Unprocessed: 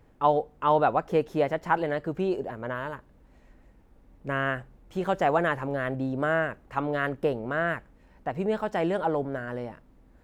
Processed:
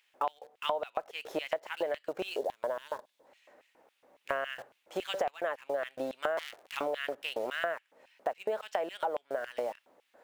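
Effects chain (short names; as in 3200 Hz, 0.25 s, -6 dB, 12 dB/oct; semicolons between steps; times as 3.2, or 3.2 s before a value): 6.37–6.77 cycle switcher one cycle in 2, inverted; LFO high-pass square 3.6 Hz 580–2800 Hz; in parallel at -9 dB: bit-crush 7-bit; on the sum: compressor 10:1, threshold -31 dBFS, peak gain reduction 22 dB; 2.37–3.27 spectral gain 1100–3200 Hz -7 dB; gain +1.5 dB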